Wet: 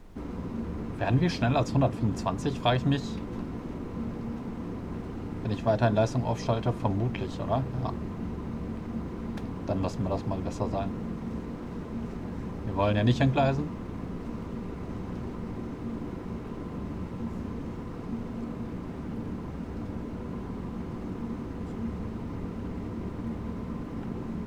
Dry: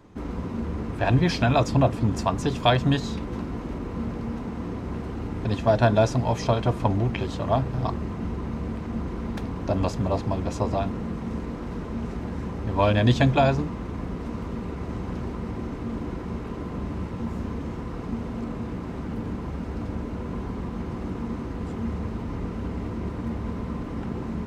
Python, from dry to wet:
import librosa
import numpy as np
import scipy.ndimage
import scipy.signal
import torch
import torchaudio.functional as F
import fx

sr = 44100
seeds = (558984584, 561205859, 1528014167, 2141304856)

y = fx.highpass(x, sr, hz=190.0, slope=6)
y = fx.low_shelf(y, sr, hz=270.0, db=8.5)
y = fx.dmg_noise_colour(y, sr, seeds[0], colour='brown', level_db=-42.0)
y = F.gain(torch.from_numpy(y), -6.0).numpy()